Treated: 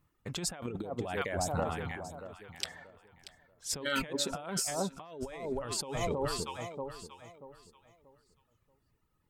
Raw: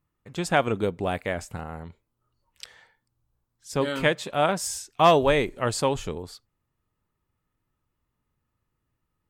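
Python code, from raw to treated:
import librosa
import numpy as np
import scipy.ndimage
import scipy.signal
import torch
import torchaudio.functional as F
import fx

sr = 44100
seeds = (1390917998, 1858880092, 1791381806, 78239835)

y = fx.dereverb_blind(x, sr, rt60_s=1.5)
y = fx.echo_alternate(y, sr, ms=317, hz=1000.0, feedback_pct=52, wet_db=-9.0)
y = fx.over_compress(y, sr, threshold_db=-35.0, ratio=-1.0)
y = F.gain(torch.from_numpy(y), -2.0).numpy()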